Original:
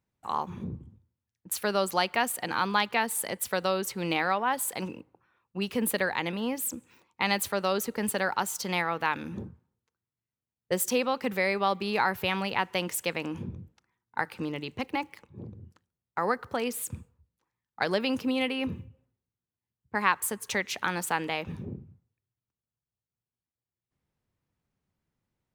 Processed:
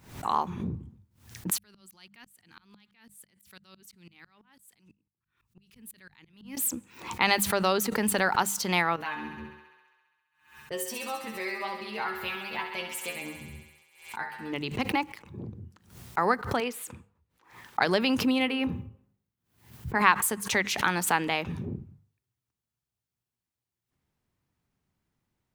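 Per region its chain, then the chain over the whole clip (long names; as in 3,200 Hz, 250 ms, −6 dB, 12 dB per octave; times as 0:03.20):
0:01.58–0:06.57: guitar amp tone stack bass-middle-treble 6-0-2 + tremolo with a ramp in dB swelling 6 Hz, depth 34 dB
0:08.96–0:14.53: stiff-string resonator 73 Hz, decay 0.41 s, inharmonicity 0.002 + feedback echo with a high-pass in the loop 67 ms, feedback 78%, high-pass 340 Hz, level −8 dB
0:16.60–0:17.80: bass and treble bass −12 dB, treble −9 dB + mains-hum notches 50/100/150 Hz
0:18.38–0:20.02: parametric band 7,000 Hz −5 dB 2.1 octaves + hum removal 50.05 Hz, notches 27
whole clip: parametric band 520 Hz −4.5 dB 0.38 octaves; mains-hum notches 50/100/150/200 Hz; background raised ahead of every attack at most 110 dB per second; level +3.5 dB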